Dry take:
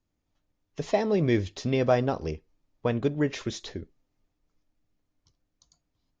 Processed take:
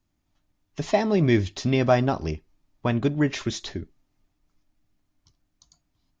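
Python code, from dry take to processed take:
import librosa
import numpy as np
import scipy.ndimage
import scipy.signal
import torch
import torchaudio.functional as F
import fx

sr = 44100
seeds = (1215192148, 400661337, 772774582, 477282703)

y = fx.peak_eq(x, sr, hz=480.0, db=-13.0, octaves=0.27)
y = y * 10.0 ** (5.0 / 20.0)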